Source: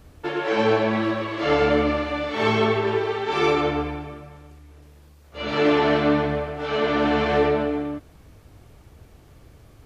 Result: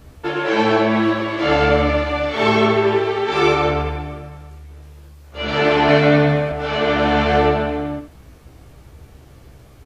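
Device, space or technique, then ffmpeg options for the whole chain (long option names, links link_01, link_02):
slapback doubling: -filter_complex "[0:a]asplit=3[link_01][link_02][link_03];[link_02]adelay=15,volume=-4dB[link_04];[link_03]adelay=83,volume=-9dB[link_05];[link_01][link_04][link_05]amix=inputs=3:normalize=0,asettb=1/sr,asplit=3[link_06][link_07][link_08];[link_06]atrim=end=5.884[link_09];[link_07]atrim=start=5.88:end=6.52,asetpts=PTS-STARTPTS,afade=type=in:duration=0.004:curve=qsin,afade=type=out:start_time=0.636:duration=0.004:curve=qsin,aecho=1:1:7.3:0.85,atrim=end_sample=28224[link_10];[link_08]atrim=start=6.516[link_11];[link_09][link_10]acrossfade=duration=0.004:curve1=hsin:curve2=qsin[link_12];[link_12][link_11]acrossfade=duration=0.004:curve1=qsin:curve2=hsin,volume=3.5dB"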